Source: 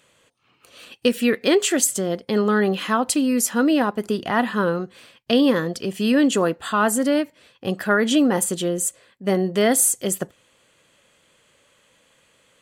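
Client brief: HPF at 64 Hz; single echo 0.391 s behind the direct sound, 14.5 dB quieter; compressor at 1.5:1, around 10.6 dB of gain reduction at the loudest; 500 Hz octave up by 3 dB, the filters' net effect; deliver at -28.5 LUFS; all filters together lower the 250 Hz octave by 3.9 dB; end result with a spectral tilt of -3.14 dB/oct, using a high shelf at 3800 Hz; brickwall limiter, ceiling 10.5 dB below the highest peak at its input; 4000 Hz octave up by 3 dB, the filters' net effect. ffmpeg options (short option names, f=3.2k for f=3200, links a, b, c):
-af "highpass=64,equalizer=f=250:t=o:g=-6.5,equalizer=f=500:t=o:g=5.5,highshelf=f=3.8k:g=-4,equalizer=f=4k:t=o:g=6.5,acompressor=threshold=-42dB:ratio=1.5,alimiter=limit=-22dB:level=0:latency=1,aecho=1:1:391:0.188,volume=3.5dB"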